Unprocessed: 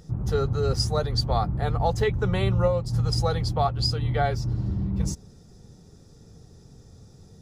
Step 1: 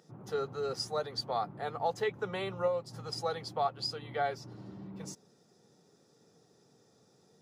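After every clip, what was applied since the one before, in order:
high-pass filter 130 Hz 24 dB per octave
bass and treble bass −13 dB, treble −4 dB
level −6 dB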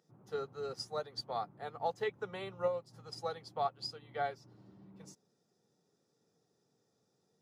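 expander for the loud parts 1.5 to 1, over −46 dBFS
level −2 dB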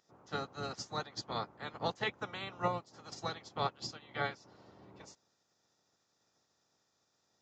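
ceiling on every frequency bin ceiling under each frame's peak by 19 dB
downsampling to 16,000 Hz

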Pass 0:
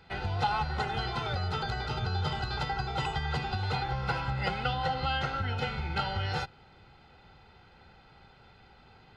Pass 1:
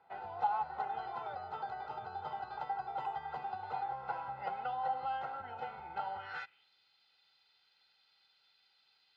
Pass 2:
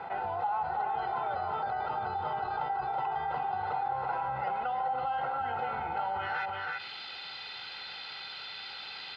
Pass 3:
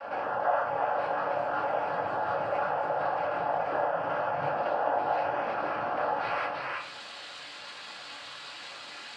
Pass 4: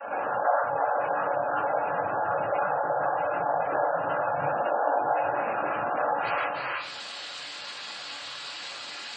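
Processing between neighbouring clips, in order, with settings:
band-pass filter sweep 810 Hz → 4,300 Hz, 0:06.15–0:06.70; level −2 dB
low-pass filter 3,600 Hz 12 dB per octave; on a send: single-tap delay 328 ms −8 dB; on the sum: envelope flattener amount 70%; level −1.5 dB
high-shelf EQ 4,300 Hz −10.5 dB; cochlear-implant simulation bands 8; rectangular room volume 190 cubic metres, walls furnished, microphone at 2.3 metres; level −1.5 dB
gate on every frequency bin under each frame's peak −25 dB strong; high-shelf EQ 5,400 Hz +10.5 dB; level +2.5 dB

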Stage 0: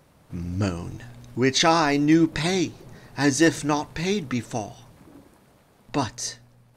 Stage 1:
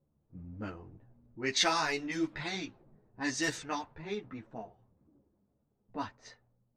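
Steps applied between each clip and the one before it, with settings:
tilt shelving filter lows −5.5 dB, about 760 Hz
low-pass that shuts in the quiet parts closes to 320 Hz, open at −15 dBFS
string-ensemble chorus
level −8.5 dB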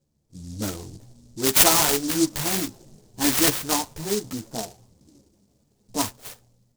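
high-shelf EQ 5,400 Hz +7 dB
automatic gain control gain up to 9 dB
short delay modulated by noise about 6,000 Hz, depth 0.16 ms
level +3 dB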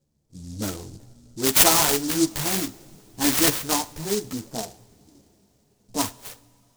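coupled-rooms reverb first 0.59 s, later 4.6 s, from −18 dB, DRR 17.5 dB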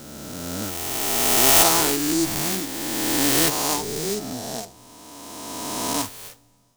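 peak hold with a rise ahead of every peak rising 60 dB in 2.73 s
level −4 dB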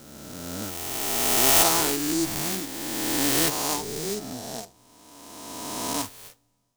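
mu-law and A-law mismatch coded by A
level −3 dB

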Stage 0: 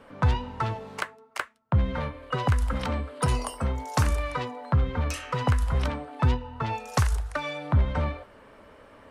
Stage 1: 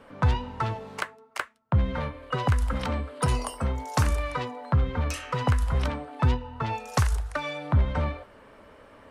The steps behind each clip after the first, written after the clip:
no processing that can be heard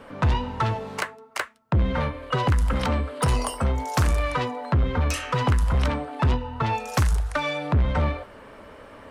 soft clipping −22 dBFS, distortion −11 dB
level +6.5 dB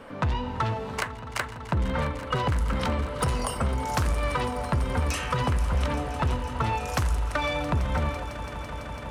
downward compressor, threshold −23 dBFS, peak gain reduction 6 dB
echo that builds up and dies away 167 ms, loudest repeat 5, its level −17 dB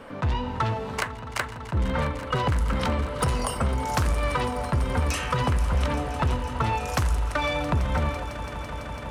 level that may rise only so fast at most 400 dB per second
level +1.5 dB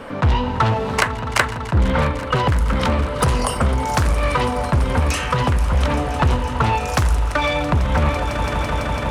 speech leveller within 5 dB 0.5 s
highs frequency-modulated by the lows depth 0.23 ms
level +7.5 dB

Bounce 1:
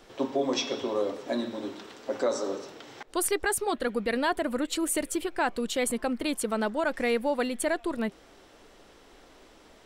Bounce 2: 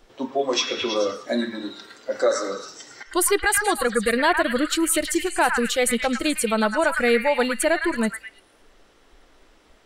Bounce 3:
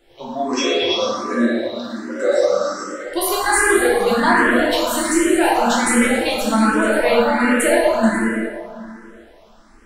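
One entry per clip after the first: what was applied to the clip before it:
echo through a band-pass that steps 108 ms, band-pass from 1,500 Hz, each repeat 0.7 octaves, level −1 dB; noise reduction from a noise print of the clip's start 11 dB; level +7.5 dB
dense smooth reverb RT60 2.5 s, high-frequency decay 0.4×, DRR −7.5 dB; frequency shifter mixed with the dry sound +1.3 Hz

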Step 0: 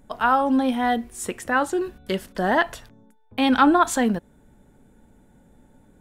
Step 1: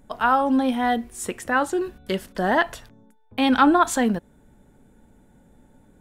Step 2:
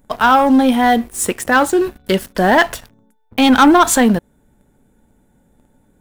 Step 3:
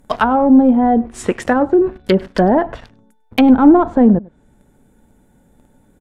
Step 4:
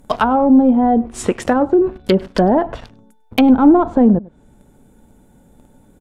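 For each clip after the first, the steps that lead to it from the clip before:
no processing that can be heard
leveller curve on the samples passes 2; high-shelf EQ 11,000 Hz +8.5 dB; level +2.5 dB
treble cut that deepens with the level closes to 580 Hz, closed at −10.5 dBFS; slap from a distant wall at 17 metres, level −23 dB; level +3 dB
parametric band 1,800 Hz −5 dB 0.56 octaves; in parallel at +1 dB: downward compressor, threshold −21 dBFS, peak gain reduction 15.5 dB; on the sum: level −3 dB

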